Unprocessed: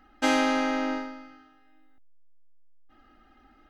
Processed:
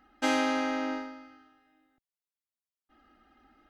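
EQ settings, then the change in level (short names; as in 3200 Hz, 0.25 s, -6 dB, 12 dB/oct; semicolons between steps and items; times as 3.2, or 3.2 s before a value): HPF 61 Hz 6 dB/oct; -3.5 dB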